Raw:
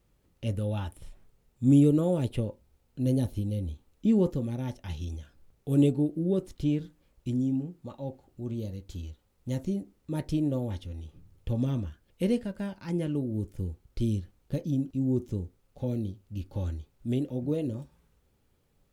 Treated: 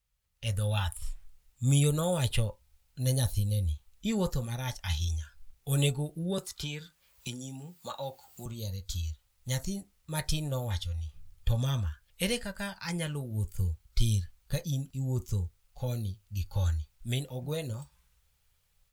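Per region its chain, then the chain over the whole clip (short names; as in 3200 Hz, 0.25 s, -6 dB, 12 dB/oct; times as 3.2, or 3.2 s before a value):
6.38–8.46 HPF 270 Hz 6 dB/oct + three-band squash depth 70%
whole clip: spectral noise reduction 9 dB; passive tone stack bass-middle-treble 10-0-10; AGC gain up to 11 dB; gain +4 dB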